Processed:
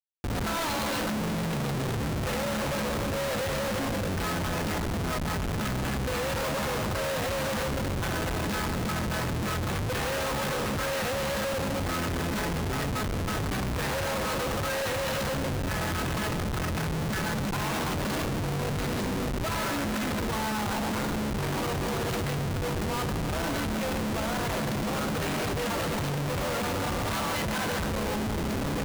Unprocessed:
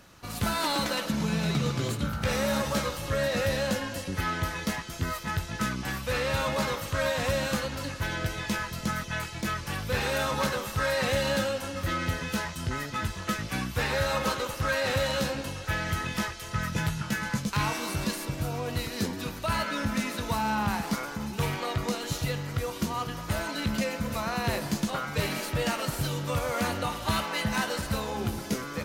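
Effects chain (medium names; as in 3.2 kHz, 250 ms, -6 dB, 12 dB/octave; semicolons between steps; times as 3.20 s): two-band feedback delay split 520 Hz, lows 270 ms, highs 141 ms, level -9 dB; Schmitt trigger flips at -32.5 dBFS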